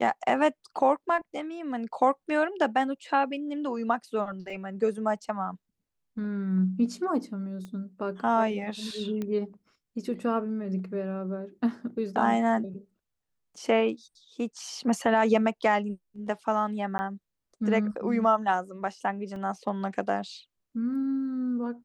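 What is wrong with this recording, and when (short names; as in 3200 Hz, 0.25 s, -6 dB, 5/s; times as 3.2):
4.5 gap 3.4 ms
7.65 pop -29 dBFS
9.22 pop -21 dBFS
16.98–16.99 gap 10 ms
19.36 gap 2.6 ms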